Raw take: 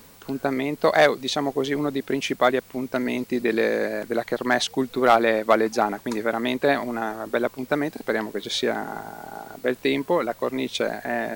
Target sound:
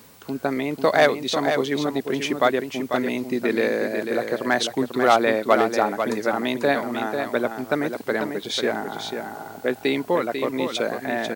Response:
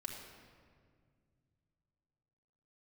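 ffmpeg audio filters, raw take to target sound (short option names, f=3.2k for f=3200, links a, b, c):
-af "highpass=65,aecho=1:1:494:0.447"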